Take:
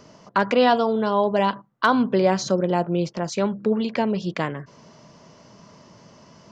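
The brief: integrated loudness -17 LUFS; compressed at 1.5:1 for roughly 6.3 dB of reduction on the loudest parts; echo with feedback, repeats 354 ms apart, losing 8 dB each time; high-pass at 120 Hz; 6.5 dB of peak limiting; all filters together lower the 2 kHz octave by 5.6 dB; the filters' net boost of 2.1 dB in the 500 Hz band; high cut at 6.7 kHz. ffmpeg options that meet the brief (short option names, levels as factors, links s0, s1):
-af "highpass=120,lowpass=6700,equalizer=f=500:t=o:g=3,equalizer=f=2000:t=o:g=-8.5,acompressor=threshold=0.0355:ratio=1.5,alimiter=limit=0.141:level=0:latency=1,aecho=1:1:354|708|1062|1416|1770:0.398|0.159|0.0637|0.0255|0.0102,volume=3.35"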